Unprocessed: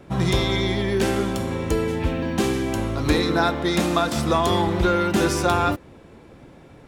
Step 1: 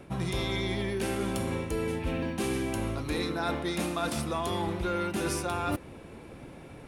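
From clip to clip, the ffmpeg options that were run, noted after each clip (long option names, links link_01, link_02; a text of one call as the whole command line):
ffmpeg -i in.wav -af "areverse,acompressor=threshold=-27dB:ratio=16,areverse,superequalizer=12b=1.41:16b=2.24" out.wav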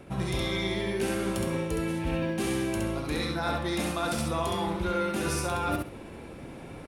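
ffmpeg -i in.wav -af "areverse,acompressor=mode=upward:threshold=-39dB:ratio=2.5,areverse,aecho=1:1:67|134|201:0.708|0.12|0.0205" out.wav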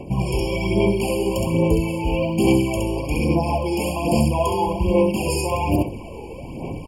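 ffmpeg -i in.wav -af "aphaser=in_gain=1:out_gain=1:delay=2.4:decay=0.54:speed=1.2:type=sinusoidal,afftfilt=real='re*eq(mod(floor(b*sr/1024/1100),2),0)':imag='im*eq(mod(floor(b*sr/1024/1100),2),0)':win_size=1024:overlap=0.75,volume=7.5dB" out.wav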